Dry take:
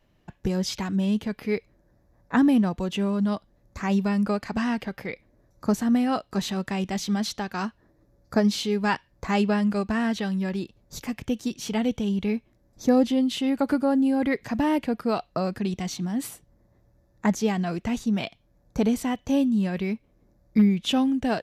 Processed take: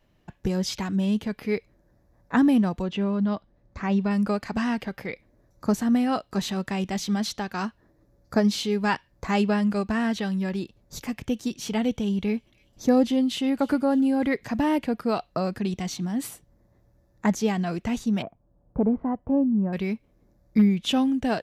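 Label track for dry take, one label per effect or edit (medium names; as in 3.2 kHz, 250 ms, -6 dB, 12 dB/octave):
2.820000	4.110000	distance through air 140 m
11.870000	14.330000	feedback echo behind a high-pass 299 ms, feedback 55%, high-pass 2.2 kHz, level -22 dB
18.220000	19.730000	low-pass 1.2 kHz 24 dB/octave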